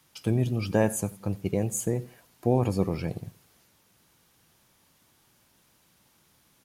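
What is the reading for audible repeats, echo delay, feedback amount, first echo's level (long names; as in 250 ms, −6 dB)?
2, 88 ms, 31%, −21.5 dB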